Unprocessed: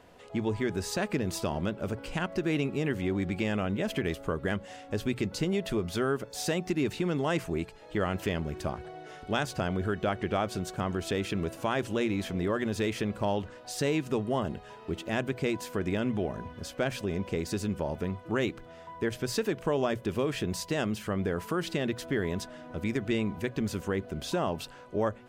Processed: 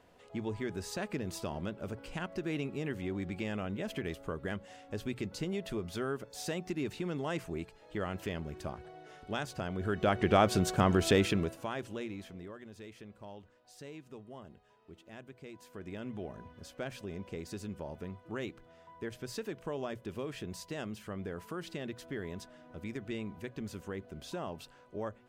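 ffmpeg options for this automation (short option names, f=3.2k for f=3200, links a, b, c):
-af "volume=14.5dB,afade=t=in:st=9.75:d=0.69:silence=0.251189,afade=t=out:st=11.16:d=0.41:silence=0.237137,afade=t=out:st=11.57:d=1.01:silence=0.251189,afade=t=in:st=15.49:d=0.8:silence=0.334965"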